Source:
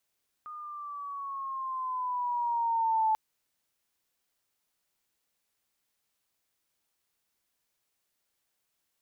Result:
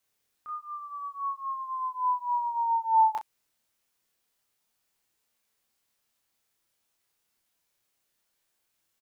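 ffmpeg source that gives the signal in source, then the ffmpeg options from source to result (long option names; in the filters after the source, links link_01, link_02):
-f lavfi -i "aevalsrc='pow(10,(-22.5+17*(t/2.69-1))/20)*sin(2*PI*1230*2.69/(-6*log(2)/12)*(exp(-6*log(2)/12*t/2.69)-1))':duration=2.69:sample_rate=44100"
-filter_complex "[0:a]asplit=2[link_01][link_02];[link_02]adelay=27,volume=-3dB[link_03];[link_01][link_03]amix=inputs=2:normalize=0,aecho=1:1:18|36:0.158|0.398"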